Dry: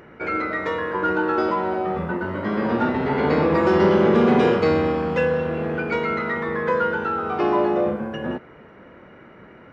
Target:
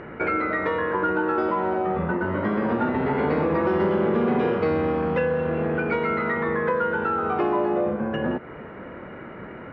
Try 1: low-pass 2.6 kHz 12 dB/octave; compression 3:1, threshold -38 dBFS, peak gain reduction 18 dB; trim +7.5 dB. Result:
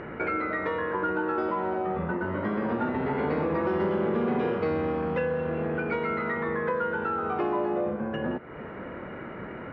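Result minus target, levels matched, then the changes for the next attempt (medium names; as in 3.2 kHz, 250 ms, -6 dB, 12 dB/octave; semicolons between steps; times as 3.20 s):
compression: peak gain reduction +4.5 dB
change: compression 3:1, threshold -31 dBFS, peak gain reduction 13.5 dB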